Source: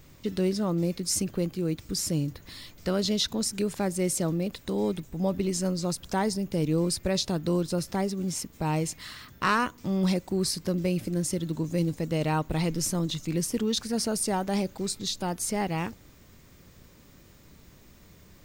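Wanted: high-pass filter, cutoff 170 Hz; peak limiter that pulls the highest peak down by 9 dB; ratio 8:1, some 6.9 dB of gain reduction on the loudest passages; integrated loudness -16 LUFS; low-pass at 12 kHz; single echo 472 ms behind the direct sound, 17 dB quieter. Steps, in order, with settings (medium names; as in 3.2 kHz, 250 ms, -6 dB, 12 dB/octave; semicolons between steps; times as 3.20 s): high-pass 170 Hz; low-pass 12 kHz; compression 8:1, threshold -29 dBFS; peak limiter -25.5 dBFS; delay 472 ms -17 dB; trim +19.5 dB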